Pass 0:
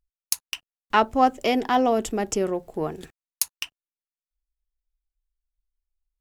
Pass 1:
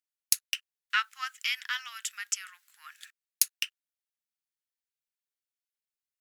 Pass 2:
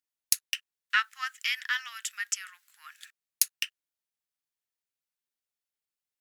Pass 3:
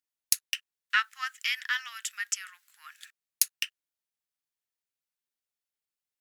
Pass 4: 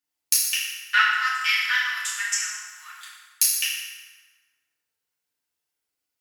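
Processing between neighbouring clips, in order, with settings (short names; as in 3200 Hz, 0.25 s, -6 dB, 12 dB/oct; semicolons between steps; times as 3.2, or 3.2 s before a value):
steep high-pass 1400 Hz 48 dB/oct
dynamic EQ 1800 Hz, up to +7 dB, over -50 dBFS, Q 5.6
nothing audible
FDN reverb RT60 1.5 s, low-frequency decay 0.8×, high-frequency decay 0.7×, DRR -8.5 dB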